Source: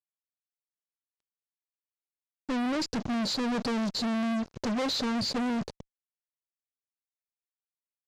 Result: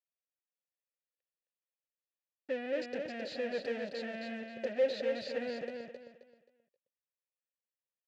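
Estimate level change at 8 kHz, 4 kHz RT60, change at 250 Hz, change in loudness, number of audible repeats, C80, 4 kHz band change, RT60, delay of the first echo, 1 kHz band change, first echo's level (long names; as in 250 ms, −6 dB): below −15 dB, no reverb audible, −14.5 dB, −7.0 dB, 3, no reverb audible, −13.5 dB, no reverb audible, 265 ms, −13.0 dB, −5.0 dB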